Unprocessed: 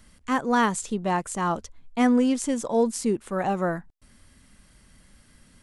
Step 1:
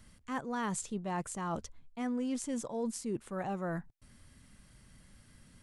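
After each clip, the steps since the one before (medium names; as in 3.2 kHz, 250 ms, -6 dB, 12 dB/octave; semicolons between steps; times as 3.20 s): peaking EQ 120 Hz +6.5 dB 1 oct; reverse; compression 6:1, threshold -28 dBFS, peak gain reduction 12 dB; reverse; trim -5 dB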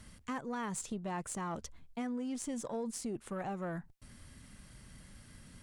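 compression 6:1, threshold -40 dBFS, peak gain reduction 9.5 dB; Chebyshev shaper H 6 -28 dB, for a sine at -29 dBFS; trim +4.5 dB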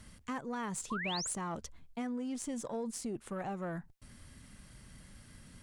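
painted sound rise, 0.90–1.34 s, 970–11000 Hz -39 dBFS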